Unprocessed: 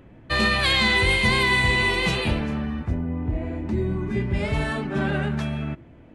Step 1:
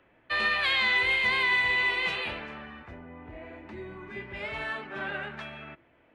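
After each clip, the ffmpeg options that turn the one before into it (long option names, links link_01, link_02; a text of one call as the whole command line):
ffmpeg -i in.wav -filter_complex "[0:a]acrossover=split=390 3500:gain=0.178 1 0.126[link_01][link_02][link_03];[link_01][link_02][link_03]amix=inputs=3:normalize=0,acrossover=split=350|1300[link_04][link_05][link_06];[link_06]acontrast=70[link_07];[link_04][link_05][link_07]amix=inputs=3:normalize=0,volume=-8dB" out.wav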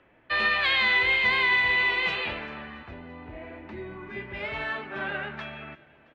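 ffmpeg -i in.wav -af "lowpass=5000,aecho=1:1:337|674|1011|1348:0.0708|0.0382|0.0206|0.0111,volume=2.5dB" out.wav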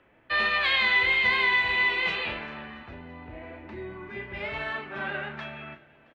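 ffmpeg -i in.wav -filter_complex "[0:a]asplit=2[link_01][link_02];[link_02]adelay=35,volume=-9dB[link_03];[link_01][link_03]amix=inputs=2:normalize=0,volume=-1dB" out.wav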